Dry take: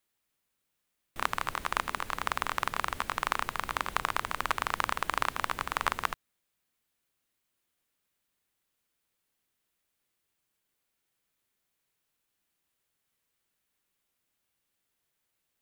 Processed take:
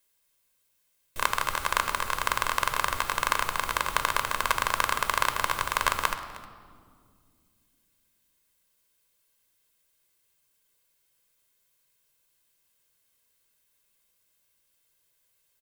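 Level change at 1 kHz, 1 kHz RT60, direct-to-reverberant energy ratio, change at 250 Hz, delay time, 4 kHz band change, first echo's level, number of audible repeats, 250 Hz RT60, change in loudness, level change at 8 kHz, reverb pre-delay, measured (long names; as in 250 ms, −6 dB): +4.5 dB, 1.8 s, 8.5 dB, +1.0 dB, 311 ms, +6.5 dB, −19.0 dB, 1, 3.5 s, +5.0 dB, +9.5 dB, 3 ms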